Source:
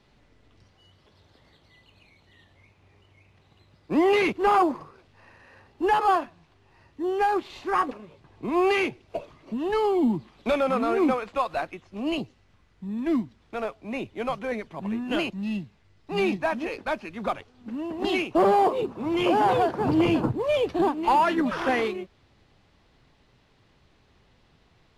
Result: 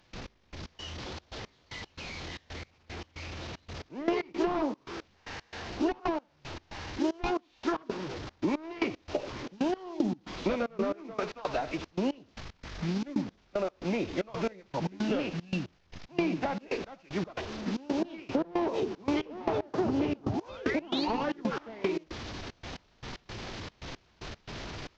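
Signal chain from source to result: delta modulation 32 kbps, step -38 dBFS; painted sound rise, 20.3–21.05, 680–4700 Hz -28 dBFS; thinning echo 80 ms, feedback 22%, high-pass 200 Hz, level -17 dB; formant-preserving pitch shift -2.5 st; step gate ".x..x.xxx" 114 bpm -24 dB; compressor 12:1, threshold -33 dBFS, peak gain reduction 15.5 dB; dynamic EQ 340 Hz, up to +5 dB, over -51 dBFS, Q 1.1; gain +4 dB

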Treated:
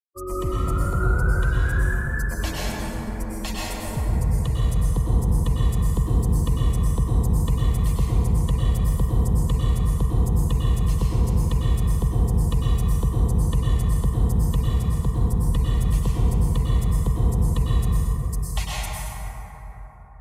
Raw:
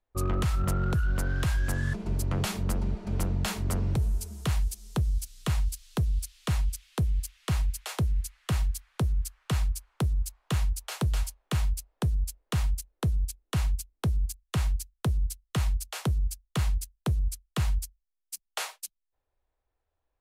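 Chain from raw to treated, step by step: per-bin expansion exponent 3; 14.65–15.19 notch comb 610 Hz; plate-style reverb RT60 4.7 s, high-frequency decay 0.3×, pre-delay 90 ms, DRR -8.5 dB; gain +4.5 dB

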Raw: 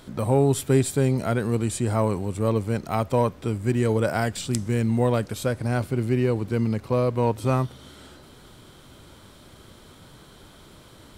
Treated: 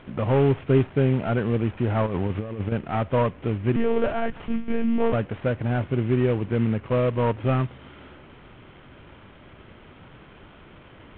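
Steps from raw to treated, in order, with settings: CVSD 16 kbps; 2.06–2.72 negative-ratio compressor -28 dBFS, ratio -0.5; 3.76–5.13 monotone LPC vocoder at 8 kHz 230 Hz; gain +1.5 dB

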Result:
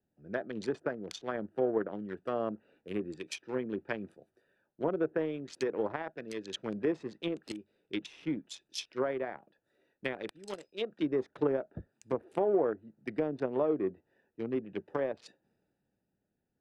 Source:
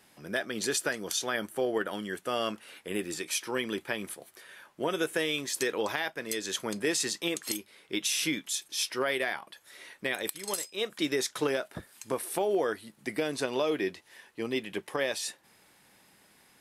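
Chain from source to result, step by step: Wiener smoothing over 41 samples; treble ducked by the level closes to 1000 Hz, closed at -28.5 dBFS; three-band expander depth 40%

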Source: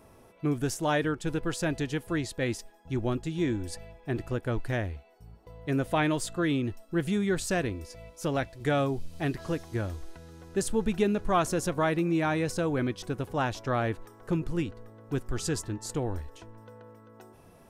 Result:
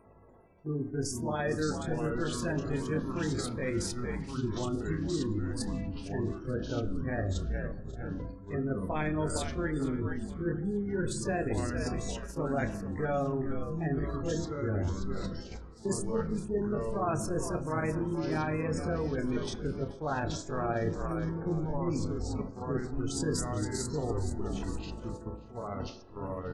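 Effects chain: notch 2800 Hz, Q 11; de-hum 163.6 Hz, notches 4; spectral gate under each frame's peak -20 dB strong; frequency-shifting echo 0.301 s, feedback 43%, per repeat -69 Hz, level -12.5 dB; reverse; compressor 5:1, threshold -36 dBFS, peak gain reduction 14.5 dB; reverse; granular stretch 1.5×, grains 0.117 s; echoes that change speed 0.294 s, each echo -4 st, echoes 2, each echo -6 dB; gate -45 dBFS, range -8 dB; on a send at -10 dB: reverb RT60 0.70 s, pre-delay 3 ms; on the sum: gain +6 dB

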